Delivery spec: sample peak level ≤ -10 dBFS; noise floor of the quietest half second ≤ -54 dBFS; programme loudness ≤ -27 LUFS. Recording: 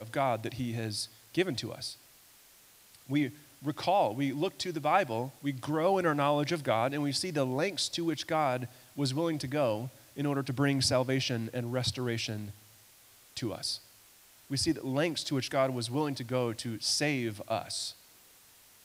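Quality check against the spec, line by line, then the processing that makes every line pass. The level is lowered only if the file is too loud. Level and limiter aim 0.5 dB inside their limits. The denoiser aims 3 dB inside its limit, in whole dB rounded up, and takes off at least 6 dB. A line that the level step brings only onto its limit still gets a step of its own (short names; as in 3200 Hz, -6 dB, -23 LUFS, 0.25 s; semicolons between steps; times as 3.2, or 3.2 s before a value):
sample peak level -11.5 dBFS: OK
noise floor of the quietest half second -59 dBFS: OK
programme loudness -31.5 LUFS: OK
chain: none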